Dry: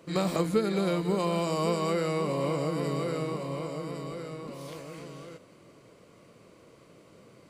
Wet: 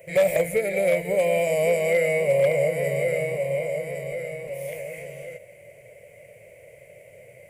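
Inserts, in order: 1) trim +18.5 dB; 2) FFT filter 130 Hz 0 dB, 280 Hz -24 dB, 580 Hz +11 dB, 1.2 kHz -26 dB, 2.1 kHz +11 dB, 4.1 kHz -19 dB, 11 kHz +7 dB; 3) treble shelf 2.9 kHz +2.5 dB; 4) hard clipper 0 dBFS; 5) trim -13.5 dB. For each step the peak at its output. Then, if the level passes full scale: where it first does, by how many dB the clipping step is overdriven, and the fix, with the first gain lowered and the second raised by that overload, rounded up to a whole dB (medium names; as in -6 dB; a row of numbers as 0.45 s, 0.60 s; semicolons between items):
+4.0 dBFS, +5.0 dBFS, +5.0 dBFS, 0.0 dBFS, -13.5 dBFS; step 1, 5.0 dB; step 1 +13.5 dB, step 5 -8.5 dB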